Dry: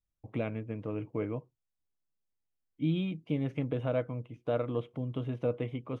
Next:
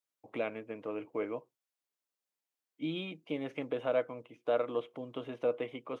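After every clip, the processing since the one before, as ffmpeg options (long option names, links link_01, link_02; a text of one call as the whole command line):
ffmpeg -i in.wav -af "highpass=410,volume=2.5dB" out.wav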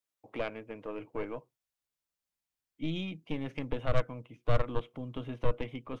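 ffmpeg -i in.wav -af "aeval=exprs='0.106*(cos(1*acos(clip(val(0)/0.106,-1,1)))-cos(1*PI/2))+0.0266*(cos(4*acos(clip(val(0)/0.106,-1,1)))-cos(4*PI/2))+0.00944*(cos(6*acos(clip(val(0)/0.106,-1,1)))-cos(6*PI/2))':channel_layout=same,asubboost=boost=6.5:cutoff=170" out.wav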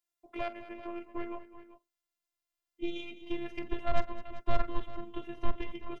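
ffmpeg -i in.wav -filter_complex "[0:a]afftfilt=real='hypot(re,im)*cos(PI*b)':imag='0':win_size=512:overlap=0.75,asplit=2[link_01][link_02];[link_02]aecho=0:1:45|208|389:0.168|0.178|0.168[link_03];[link_01][link_03]amix=inputs=2:normalize=0,volume=2.5dB" out.wav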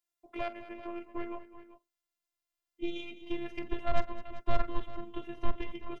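ffmpeg -i in.wav -af anull out.wav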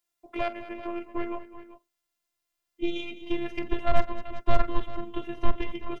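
ffmpeg -i in.wav -af "asoftclip=type=hard:threshold=-13.5dB,volume=6.5dB" out.wav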